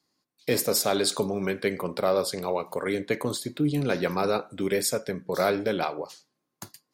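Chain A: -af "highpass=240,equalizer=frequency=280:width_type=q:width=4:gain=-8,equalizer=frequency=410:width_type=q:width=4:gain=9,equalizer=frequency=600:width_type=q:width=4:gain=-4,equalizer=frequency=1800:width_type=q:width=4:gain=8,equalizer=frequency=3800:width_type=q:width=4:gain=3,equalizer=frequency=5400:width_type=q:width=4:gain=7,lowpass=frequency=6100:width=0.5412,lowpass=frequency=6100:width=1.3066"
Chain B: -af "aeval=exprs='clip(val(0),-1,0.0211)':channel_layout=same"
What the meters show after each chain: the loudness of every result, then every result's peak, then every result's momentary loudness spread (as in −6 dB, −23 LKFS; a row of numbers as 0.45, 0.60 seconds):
−25.5, −30.0 LKFS; −9.0, −11.5 dBFS; 8, 7 LU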